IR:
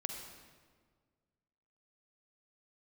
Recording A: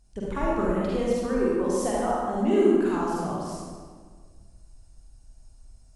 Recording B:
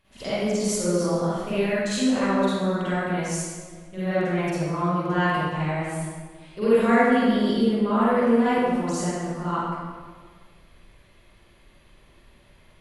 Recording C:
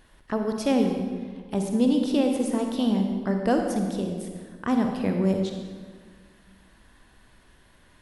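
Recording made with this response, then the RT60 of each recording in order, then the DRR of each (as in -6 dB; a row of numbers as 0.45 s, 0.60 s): C; 1.7 s, 1.7 s, 1.7 s; -6.0 dB, -13.0 dB, 3.5 dB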